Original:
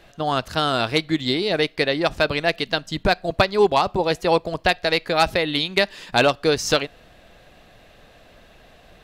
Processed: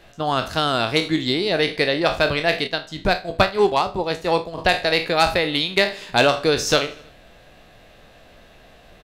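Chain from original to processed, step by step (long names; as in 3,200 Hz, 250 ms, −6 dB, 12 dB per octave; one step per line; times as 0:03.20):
peak hold with a decay on every bin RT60 0.32 s
repeating echo 80 ms, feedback 57%, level −21.5 dB
0:02.67–0:04.58: expander for the loud parts 1.5 to 1, over −27 dBFS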